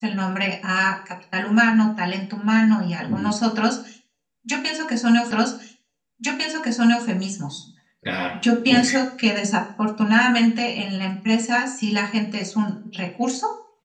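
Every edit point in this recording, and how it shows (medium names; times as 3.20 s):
5.31 s: repeat of the last 1.75 s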